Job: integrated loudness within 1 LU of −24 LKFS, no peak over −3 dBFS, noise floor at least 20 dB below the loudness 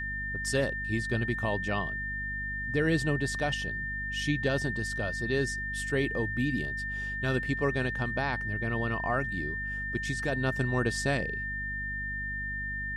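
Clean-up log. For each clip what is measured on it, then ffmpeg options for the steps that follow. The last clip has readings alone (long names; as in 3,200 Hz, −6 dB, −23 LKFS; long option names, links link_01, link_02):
mains hum 50 Hz; hum harmonics up to 250 Hz; level of the hum −38 dBFS; interfering tone 1,800 Hz; level of the tone −33 dBFS; integrated loudness −30.5 LKFS; sample peak −15.5 dBFS; target loudness −24.0 LKFS
→ -af "bandreject=frequency=50:width_type=h:width=6,bandreject=frequency=100:width_type=h:width=6,bandreject=frequency=150:width_type=h:width=6,bandreject=frequency=200:width_type=h:width=6,bandreject=frequency=250:width_type=h:width=6"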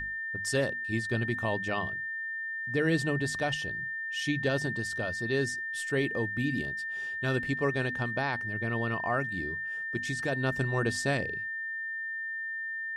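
mains hum none found; interfering tone 1,800 Hz; level of the tone −33 dBFS
→ -af "bandreject=frequency=1800:width=30"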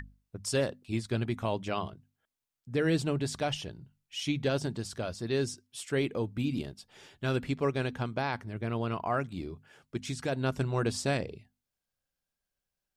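interfering tone none found; integrated loudness −33.0 LKFS; sample peak −17.0 dBFS; target loudness −24.0 LKFS
→ -af "volume=9dB"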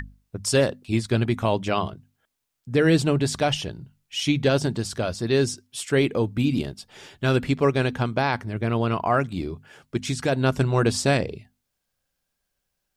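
integrated loudness −24.0 LKFS; sample peak −8.0 dBFS; background noise floor −79 dBFS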